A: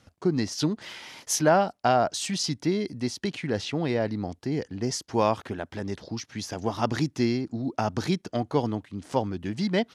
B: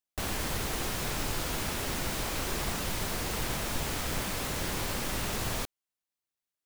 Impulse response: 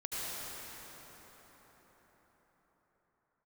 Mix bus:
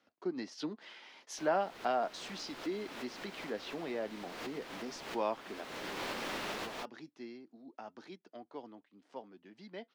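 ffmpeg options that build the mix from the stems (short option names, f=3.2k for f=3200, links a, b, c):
-filter_complex "[0:a]highpass=140,flanger=delay=3:depth=2.2:regen=-71:speed=0.36:shape=sinusoidal,volume=-6dB,afade=t=out:st=5.53:d=0.34:silence=0.334965,asplit=2[a][b];[1:a]adelay=1200,volume=-1.5dB[c];[b]apad=whole_len=346412[d];[c][d]sidechaincompress=threshold=-49dB:ratio=6:attack=10:release=258[e];[a][e]amix=inputs=2:normalize=0,acrossover=split=220 4800:gain=0.0794 1 0.158[f][g][h];[f][g][h]amix=inputs=3:normalize=0"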